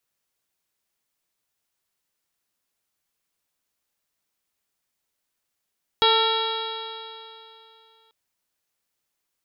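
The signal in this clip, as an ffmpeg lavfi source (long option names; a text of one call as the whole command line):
ffmpeg -f lavfi -i "aevalsrc='0.0891*pow(10,-3*t/2.8)*sin(2*PI*444.62*t)+0.1*pow(10,-3*t/2.8)*sin(2*PI*892.96*t)+0.0708*pow(10,-3*t/2.8)*sin(2*PI*1348.68*t)+0.0251*pow(10,-3*t/2.8)*sin(2*PI*1815.35*t)+0.0266*pow(10,-3*t/2.8)*sin(2*PI*2296.39*t)+0.0282*pow(10,-3*t/2.8)*sin(2*PI*2795.04*t)+0.1*pow(10,-3*t/2.8)*sin(2*PI*3314.36*t)+0.0891*pow(10,-3*t/2.8)*sin(2*PI*3857.15*t)+0.0188*pow(10,-3*t/2.8)*sin(2*PI*4426.01*t)+0.0126*pow(10,-3*t/2.8)*sin(2*PI*5023.29*t)':duration=2.09:sample_rate=44100" out.wav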